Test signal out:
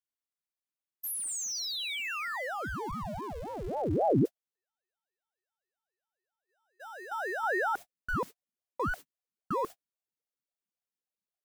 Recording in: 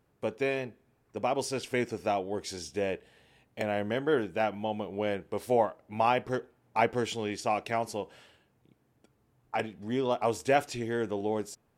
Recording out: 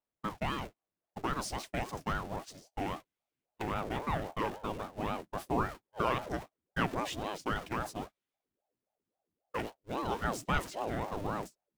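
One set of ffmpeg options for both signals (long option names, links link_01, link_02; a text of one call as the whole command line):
ffmpeg -i in.wav -af "aeval=exprs='val(0)+0.5*0.015*sgn(val(0))':channel_layout=same,agate=range=-47dB:threshold=-33dB:ratio=16:detection=peak,asubboost=boost=8.5:cutoff=79,aeval=exprs='val(0)*sin(2*PI*470*n/s+470*0.6/3.7*sin(2*PI*3.7*n/s))':channel_layout=same,volume=-3dB" out.wav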